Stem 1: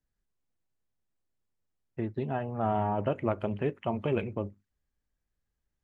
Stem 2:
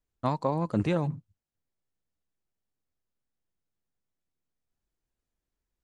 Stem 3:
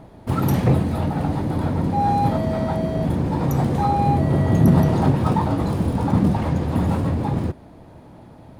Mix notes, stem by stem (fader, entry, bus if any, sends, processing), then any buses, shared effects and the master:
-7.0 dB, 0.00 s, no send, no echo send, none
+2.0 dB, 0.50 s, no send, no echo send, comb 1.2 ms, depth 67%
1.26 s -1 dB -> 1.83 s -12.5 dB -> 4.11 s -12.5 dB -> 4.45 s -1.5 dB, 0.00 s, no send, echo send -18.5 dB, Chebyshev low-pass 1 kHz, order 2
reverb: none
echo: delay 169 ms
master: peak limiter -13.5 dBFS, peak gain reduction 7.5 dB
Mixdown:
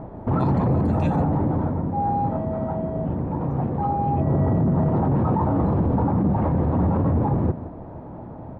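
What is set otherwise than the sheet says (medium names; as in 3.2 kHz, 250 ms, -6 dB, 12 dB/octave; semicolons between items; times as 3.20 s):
stem 1 -7.0 dB -> -17.5 dB; stem 2: entry 0.50 s -> 0.15 s; stem 3 -1.0 dB -> +8.0 dB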